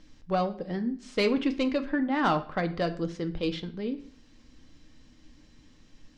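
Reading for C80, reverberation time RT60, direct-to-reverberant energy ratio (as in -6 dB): 18.5 dB, 0.50 s, 6.5 dB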